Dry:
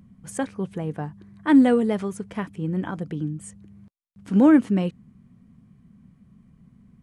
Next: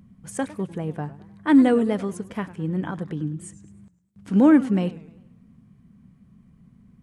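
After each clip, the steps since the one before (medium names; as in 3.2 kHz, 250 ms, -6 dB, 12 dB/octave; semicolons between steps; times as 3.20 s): modulated delay 101 ms, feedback 46%, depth 206 cents, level -17 dB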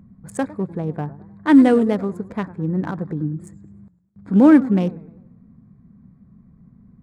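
local Wiener filter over 15 samples; trim +4 dB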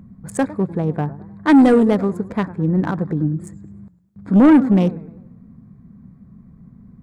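saturation -11 dBFS, distortion -11 dB; trim +5 dB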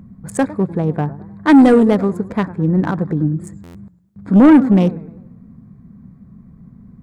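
buffer glitch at 3.63 s, samples 512, times 9; trim +2.5 dB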